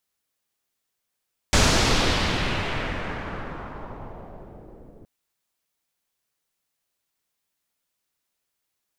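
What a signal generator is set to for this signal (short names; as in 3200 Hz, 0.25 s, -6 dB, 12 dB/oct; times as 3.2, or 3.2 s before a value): swept filtered noise pink, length 3.52 s lowpass, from 7000 Hz, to 410 Hz, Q 1.3, exponential, gain ramp -28 dB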